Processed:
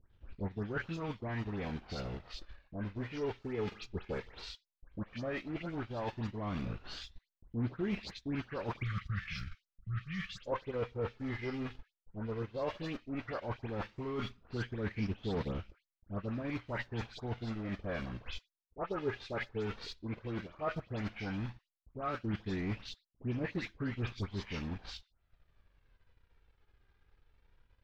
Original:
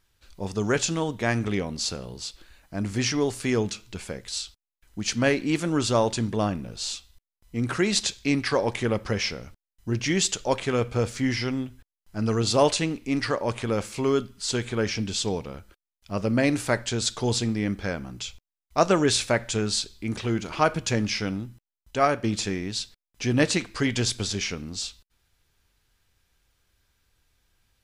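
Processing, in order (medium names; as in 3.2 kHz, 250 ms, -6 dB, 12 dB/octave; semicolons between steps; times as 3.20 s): block-companded coder 3-bit; treble shelf 4.4 kHz -10.5 dB; phase dispersion highs, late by 123 ms, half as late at 2.1 kHz; time-frequency box 8.83–10.41 s, 210–1100 Hz -29 dB; reverse; compression 10:1, threshold -35 dBFS, peak gain reduction 20.5 dB; reverse; flange 0.13 Hz, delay 0.2 ms, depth 2.3 ms, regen +53%; transient shaper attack +2 dB, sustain -8 dB; distance through air 250 m; trim +5 dB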